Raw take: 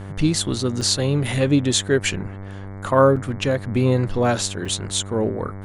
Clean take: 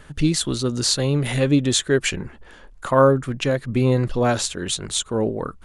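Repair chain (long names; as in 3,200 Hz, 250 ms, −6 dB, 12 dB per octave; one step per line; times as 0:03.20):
hum removal 97.9 Hz, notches 23
repair the gap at 0:00.81/0:03.16/0:04.65, 5.2 ms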